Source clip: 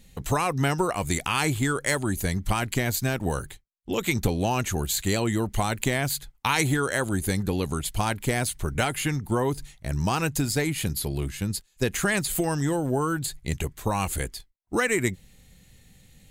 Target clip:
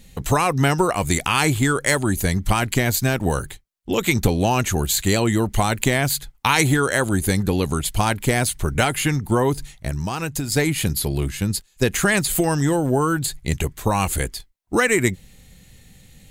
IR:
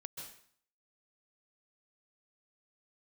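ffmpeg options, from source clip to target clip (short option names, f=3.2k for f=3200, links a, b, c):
-filter_complex "[0:a]asettb=1/sr,asplit=3[a][b][c];[a]atrim=end=9.884[d];[b]atrim=start=9.88:end=10.52,asetpts=PTS-STARTPTS,afade=t=in:d=0.004:c=qsin,afade=t=out:st=0.636:d=0.004:c=qsin,acompressor=threshold=-29dB:ratio=4[e];[c]atrim=start=10.516[f];[d][e]acrossfade=d=0.004:c1=hsin:c2=qsin[g];[g][f]acrossfade=d=0.004:c1=qsin:c2=hsin,volume=6dB"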